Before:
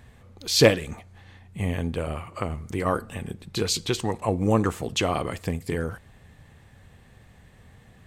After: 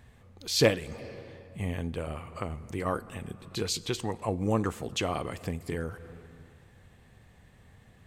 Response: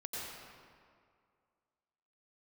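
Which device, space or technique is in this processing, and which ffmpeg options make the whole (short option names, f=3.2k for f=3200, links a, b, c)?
ducked reverb: -filter_complex "[0:a]asplit=3[a][b][c];[1:a]atrim=start_sample=2205[d];[b][d]afir=irnorm=-1:irlink=0[e];[c]apad=whole_len=355748[f];[e][f]sidechaincompress=threshold=-40dB:ratio=8:attack=24:release=168,volume=-10.5dB[g];[a][g]amix=inputs=2:normalize=0,volume=-6dB"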